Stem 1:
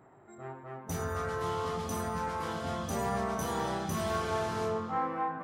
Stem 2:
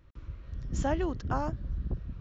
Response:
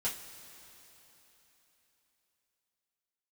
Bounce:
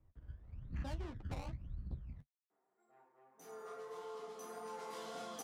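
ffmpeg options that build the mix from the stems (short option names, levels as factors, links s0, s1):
-filter_complex "[0:a]highpass=f=240:w=0.5412,highpass=f=240:w=1.3066,adelay=2500,volume=0.562,afade=t=in:st=3.28:d=0.39:silence=0.354813,afade=t=in:st=4.5:d=0.43:silence=0.316228,asplit=2[s0][s1];[s1]volume=0.668[s2];[1:a]equalizer=f=410:t=o:w=1.4:g=-6.5,acrusher=samples=19:mix=1:aa=0.000001:lfo=1:lforange=19:lforate=0.95,adynamicsmooth=sensitivity=4.5:basefreq=1700,volume=0.531[s3];[2:a]atrim=start_sample=2205[s4];[s2][s4]afir=irnorm=-1:irlink=0[s5];[s0][s3][s5]amix=inputs=3:normalize=0,acrossover=split=170|3000[s6][s7][s8];[s7]acompressor=threshold=0.00891:ratio=6[s9];[s6][s9][s8]amix=inputs=3:normalize=0,flanger=delay=8.8:depth=6.7:regen=-32:speed=1.7:shape=sinusoidal"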